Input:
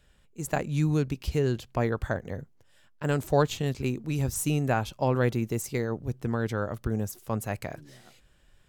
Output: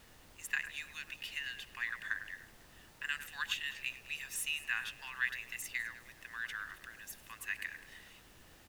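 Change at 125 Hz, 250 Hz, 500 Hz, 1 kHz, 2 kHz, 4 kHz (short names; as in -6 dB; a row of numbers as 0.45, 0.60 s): -36.0, -34.5, -35.5, -17.5, +1.5, +0.5 dB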